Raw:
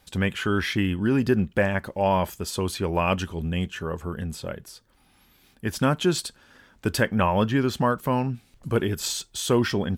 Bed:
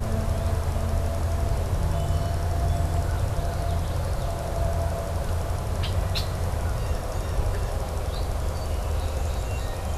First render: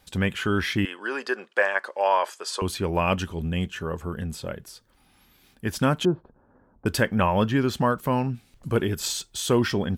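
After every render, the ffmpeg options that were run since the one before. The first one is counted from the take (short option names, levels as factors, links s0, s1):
-filter_complex "[0:a]asettb=1/sr,asplit=3[s0][s1][s2];[s0]atrim=end=0.854[s3];[s1]atrim=start=0.85:end=2.62,asetpts=PTS-STARTPTS,afade=t=in:d=0.004:c=qsin,afade=t=out:st=1.766:d=0.004:c=qsin,highpass=f=440:w=0.5412,highpass=f=440:w=1.3066,equalizer=f=1100:t=q:w=4:g=6,equalizer=f=1600:t=q:w=4:g=6,equalizer=f=4700:t=q:w=4:g=4,lowpass=f=9800:w=0.5412,lowpass=f=9800:w=1.3066[s4];[s2]atrim=start=2.616[s5];[s3][s4]acrossfade=d=0.004:c1=hsin:c2=qsin[s6];[s6][s5]acrossfade=d=0.004:c1=qsin:c2=hsin,asettb=1/sr,asplit=3[s7][s8][s9];[s7]atrim=end=6.054[s10];[s8]atrim=start=6.05:end=6.86,asetpts=PTS-STARTPTS,afade=t=in:d=0.004:c=qsin,afade=t=out:st=0.806:d=0.004:c=qsin,lowpass=f=1000:w=0.5412,lowpass=f=1000:w=1.3066[s11];[s9]atrim=start=6.856[s12];[s10][s11]acrossfade=d=0.004:c1=hsin:c2=qsin[s13];[s13][s12]acrossfade=d=0.004:c1=qsin:c2=hsin"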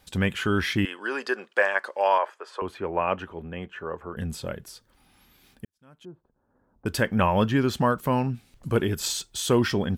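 -filter_complex "[0:a]asettb=1/sr,asplit=3[s0][s1][s2];[s0]atrim=end=2.184[s3];[s1]atrim=start=2.18:end=4.17,asetpts=PTS-STARTPTS,afade=t=in:d=0.004:c=qsin,afade=t=out:st=1.986:d=0.004:c=qsin,acrossover=split=330 2300:gain=0.224 1 0.0794[s4][s5][s6];[s4][s5][s6]amix=inputs=3:normalize=0[s7];[s2]atrim=start=4.166[s8];[s3][s7]acrossfade=d=0.004:c1=hsin:c2=qsin[s9];[s9][s8]acrossfade=d=0.004:c1=qsin:c2=hsin,asplit=2[s10][s11];[s10]atrim=end=5.65,asetpts=PTS-STARTPTS,afade=t=out:st=5.646:d=0.004:c=hsin[s12];[s11]atrim=start=5.65,asetpts=PTS-STARTPTS,afade=t=in:d=1.51:c=qua[s13];[s12][s13]concat=n=2:v=0:a=1"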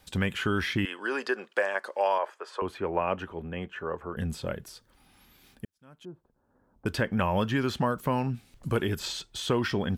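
-filter_complex "[0:a]acrossover=split=690|4400[s0][s1][s2];[s0]acompressor=threshold=0.0562:ratio=4[s3];[s1]acompressor=threshold=0.0355:ratio=4[s4];[s2]acompressor=threshold=0.00447:ratio=4[s5];[s3][s4][s5]amix=inputs=3:normalize=0"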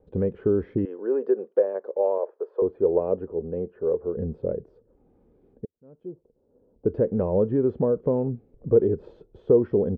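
-af "lowpass=f=460:t=q:w=4.9"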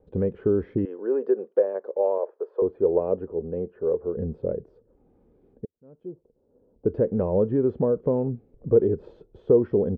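-af anull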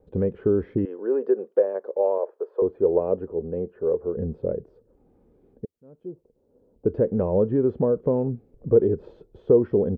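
-af "volume=1.12"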